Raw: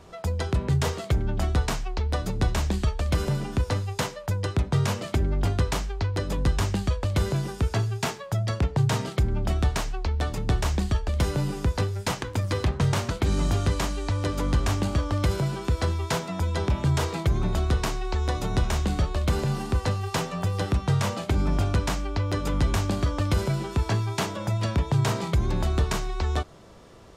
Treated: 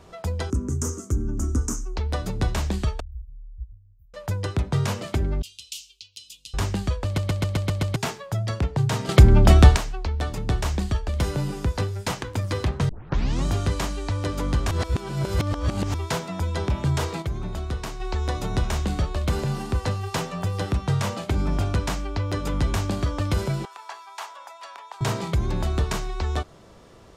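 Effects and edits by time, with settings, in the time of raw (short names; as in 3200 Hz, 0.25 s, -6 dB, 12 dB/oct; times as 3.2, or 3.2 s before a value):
0.5–1.96 EQ curve 100 Hz 0 dB, 150 Hz -10 dB, 260 Hz +9 dB, 430 Hz -4 dB, 710 Hz -19 dB, 1300 Hz -4 dB, 1800 Hz -17 dB, 4100 Hz -25 dB, 6200 Hz +10 dB, 12000 Hz 0 dB
3–4.14 inverse Chebyshev band-stop 280–7500 Hz, stop band 80 dB
5.42–6.54 elliptic high-pass 2800 Hz
7.05 stutter in place 0.13 s, 7 plays
9.09–9.76 gain +12 dB
12.89 tape start 0.56 s
14.71–15.94 reverse
17.22–18 gain -5.5 dB
23.65–25.01 ladder high-pass 760 Hz, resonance 45%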